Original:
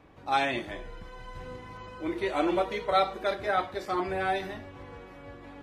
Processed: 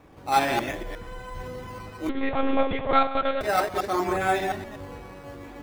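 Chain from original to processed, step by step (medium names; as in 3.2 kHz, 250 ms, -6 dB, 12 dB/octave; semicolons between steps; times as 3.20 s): chunks repeated in reverse 119 ms, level -3.5 dB; in parallel at -5 dB: decimation with a swept rate 9×, swing 100% 0.64 Hz; 2.09–3.41 s: on the sum: monotone LPC vocoder at 8 kHz 270 Hz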